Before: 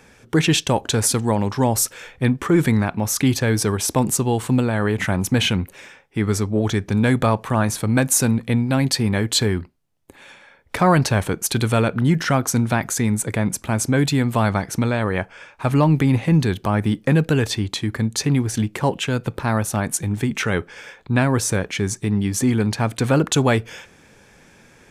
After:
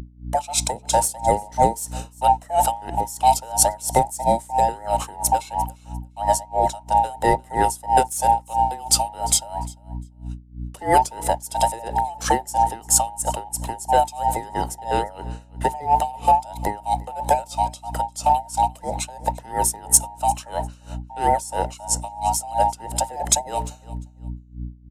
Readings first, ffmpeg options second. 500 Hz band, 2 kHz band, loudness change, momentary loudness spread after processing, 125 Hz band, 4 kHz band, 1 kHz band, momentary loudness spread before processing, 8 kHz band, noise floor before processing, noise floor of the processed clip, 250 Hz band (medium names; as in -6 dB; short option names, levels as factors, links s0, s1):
-2.5 dB, -10.5 dB, -1.5 dB, 15 LU, -13.0 dB, -5.0 dB, +8.5 dB, 6 LU, +2.0 dB, -52 dBFS, -47 dBFS, -15.0 dB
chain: -filter_complex "[0:a]afftfilt=real='real(if(between(b,1,1008),(2*floor((b-1)/48)+1)*48-b,b),0)':imag='imag(if(between(b,1,1008),(2*floor((b-1)/48)+1)*48-b,b),0)*if(between(b,1,1008),-1,1)':win_size=2048:overlap=0.75,bandreject=f=62.71:t=h:w=4,bandreject=f=125.42:t=h:w=4,bandreject=f=188.13:t=h:w=4,bandreject=f=250.84:t=h:w=4,bandreject=f=313.55:t=h:w=4,bandreject=f=376.26:t=h:w=4,bandreject=f=438.97:t=h:w=4,agate=range=0.00501:threshold=0.00891:ratio=16:detection=peak,firequalizer=gain_entry='entry(120,0);entry(780,3);entry(1400,-8);entry(8200,12);entry(14000,7)':delay=0.05:min_phase=1,acrossover=split=630|1700[s0][s1][s2];[s0]aeval=exprs='sgn(val(0))*max(abs(val(0))-0.00299,0)':c=same[s3];[s3][s1][s2]amix=inputs=3:normalize=0,aeval=exprs='val(0)+0.0355*(sin(2*PI*60*n/s)+sin(2*PI*2*60*n/s)/2+sin(2*PI*3*60*n/s)/3+sin(2*PI*4*60*n/s)/4+sin(2*PI*5*60*n/s)/5)':c=same,asoftclip=type=tanh:threshold=0.891,aecho=1:1:349|698:0.0944|0.0179,aeval=exprs='val(0)*pow(10,-22*(0.5-0.5*cos(2*PI*3*n/s))/20)':c=same,volume=1.19"